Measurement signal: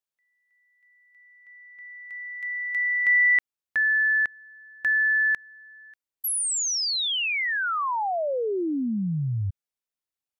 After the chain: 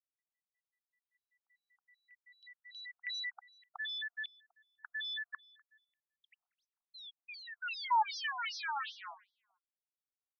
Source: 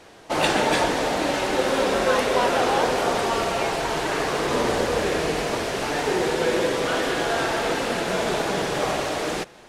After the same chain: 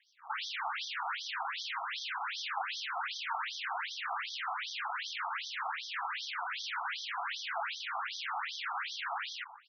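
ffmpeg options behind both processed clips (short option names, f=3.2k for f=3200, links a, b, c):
-filter_complex "[0:a]highpass=f=43:p=1,acrossover=split=3500[a][b];[b]acompressor=threshold=-36dB:ratio=4:attack=1:release=60[c];[a][c]amix=inputs=2:normalize=0,equalizer=f=125:t=o:w=1:g=-10,equalizer=f=250:t=o:w=1:g=11,equalizer=f=500:t=o:w=1:g=11,equalizer=f=2k:t=o:w=1:g=-12,equalizer=f=4k:t=o:w=1:g=-12,equalizer=f=8k:t=o:w=1:g=4,acontrast=54,aeval=exprs='(tanh(4.47*val(0)+0.35)-tanh(0.35))/4.47':c=same,aeval=exprs='0.15*(abs(mod(val(0)/0.15+3,4)-2)-1)':c=same,aeval=exprs='0.158*(cos(1*acos(clip(val(0)/0.158,-1,1)))-cos(1*PI/2))+0.0282*(cos(2*acos(clip(val(0)/0.158,-1,1)))-cos(2*PI/2))+0.00447*(cos(4*acos(clip(val(0)/0.158,-1,1)))-cos(4*PI/2))+0.0398*(cos(6*acos(clip(val(0)/0.158,-1,1)))-cos(6*PI/2))+0.0126*(cos(7*acos(clip(val(0)/0.158,-1,1)))-cos(7*PI/2))':c=same,asplit=2[d][e];[e]adelay=248,lowpass=f=4.1k:p=1,volume=-22dB,asplit=2[f][g];[g]adelay=248,lowpass=f=4.1k:p=1,volume=0.17[h];[d][f][h]amix=inputs=3:normalize=0,afftfilt=real='re*between(b*sr/1024,960*pow(4500/960,0.5+0.5*sin(2*PI*2.6*pts/sr))/1.41,960*pow(4500/960,0.5+0.5*sin(2*PI*2.6*pts/sr))*1.41)':imag='im*between(b*sr/1024,960*pow(4500/960,0.5+0.5*sin(2*PI*2.6*pts/sr))/1.41,960*pow(4500/960,0.5+0.5*sin(2*PI*2.6*pts/sr))*1.41)':win_size=1024:overlap=0.75,volume=-6.5dB"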